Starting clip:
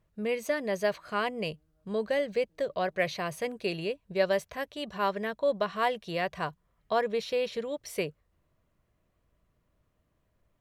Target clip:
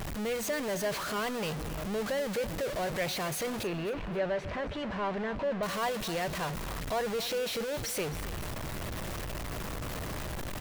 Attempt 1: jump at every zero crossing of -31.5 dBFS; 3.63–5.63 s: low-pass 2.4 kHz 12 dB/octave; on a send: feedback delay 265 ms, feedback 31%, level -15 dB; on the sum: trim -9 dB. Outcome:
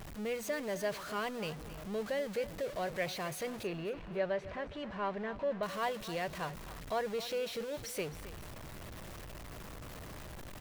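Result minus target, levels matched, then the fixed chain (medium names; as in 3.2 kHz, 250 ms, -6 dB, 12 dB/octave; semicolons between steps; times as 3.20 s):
jump at every zero crossing: distortion -7 dB
jump at every zero crossing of -21.5 dBFS; 3.63–5.63 s: low-pass 2.4 kHz 12 dB/octave; on a send: feedback delay 265 ms, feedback 31%, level -15 dB; on the sum: trim -9 dB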